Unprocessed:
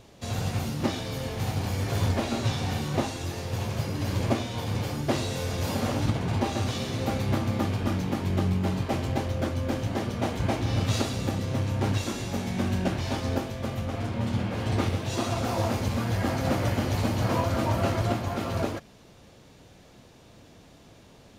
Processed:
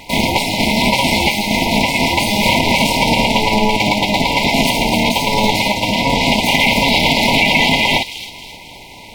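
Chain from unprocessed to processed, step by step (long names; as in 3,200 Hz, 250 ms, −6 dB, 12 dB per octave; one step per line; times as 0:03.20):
amplitude modulation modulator 180 Hz, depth 100%
flat-topped bell 910 Hz +13.5 dB 2.7 octaves
delay with a high-pass on its return 624 ms, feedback 43%, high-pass 1,900 Hz, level −8 dB
wrong playback speed 33 rpm record played at 78 rpm
low-shelf EQ 94 Hz +9.5 dB
brick-wall band-stop 1,000–2,000 Hz
boost into a limiter +15.5 dB
level −1 dB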